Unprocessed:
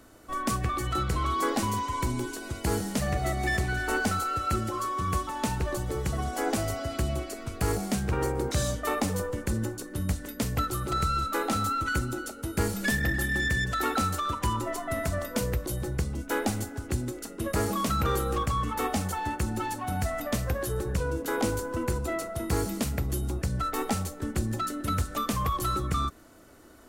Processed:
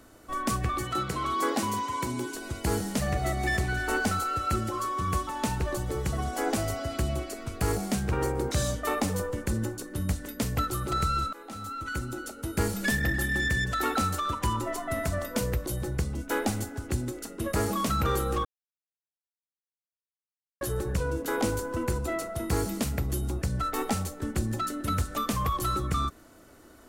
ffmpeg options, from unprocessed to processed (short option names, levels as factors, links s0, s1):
-filter_complex "[0:a]asettb=1/sr,asplit=3[s0][s1][s2];[s0]atrim=end=0.834[s3];[s1]atrim=start=0.83:end=2.35,asetpts=PTS-STARTPTS,afade=t=in:d=0.004:c=qsin,afade=t=out:st=1.516:d=0.004:c=qsin,highpass=140[s4];[s2]atrim=start=2.346[s5];[s3][s4]acrossfade=d=0.004:c1=hsin:c2=qsin[s6];[s6][s5]acrossfade=d=0.004:c1=qsin:c2=hsin,asplit=4[s7][s8][s9][s10];[s7]atrim=end=11.33,asetpts=PTS-STARTPTS,afade=t=out:st=11.326:d=0.004:c=hsin:silence=0.0749894[s11];[s8]atrim=start=11.33:end=18.45,asetpts=PTS-STARTPTS,afade=t=in:d=1.16:silence=0.0749894,afade=t=out:st=7.116:d=0.004:c=hsin[s12];[s9]atrim=start=18.45:end=20.61,asetpts=PTS-STARTPTS,volume=0[s13];[s10]atrim=start=20.61,asetpts=PTS-STARTPTS,afade=t=in:d=0.004:c=hsin[s14];[s11][s12][s13][s14]concat=n=4:v=0:a=1"